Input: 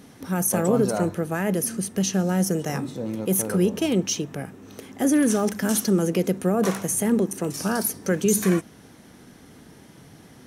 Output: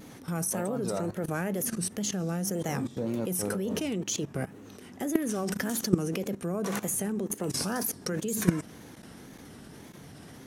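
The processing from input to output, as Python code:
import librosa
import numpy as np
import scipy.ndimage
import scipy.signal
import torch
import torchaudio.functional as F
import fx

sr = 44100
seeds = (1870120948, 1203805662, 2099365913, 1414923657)

y = fx.level_steps(x, sr, step_db=17)
y = fx.wow_flutter(y, sr, seeds[0], rate_hz=2.1, depth_cents=130.0)
y = y * 10.0 ** (3.5 / 20.0)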